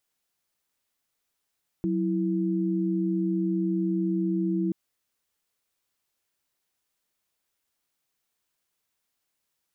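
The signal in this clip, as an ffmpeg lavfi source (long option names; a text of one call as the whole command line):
ffmpeg -f lavfi -i "aevalsrc='0.0501*(sin(2*PI*185*t)+sin(2*PI*329.63*t))':duration=2.88:sample_rate=44100" out.wav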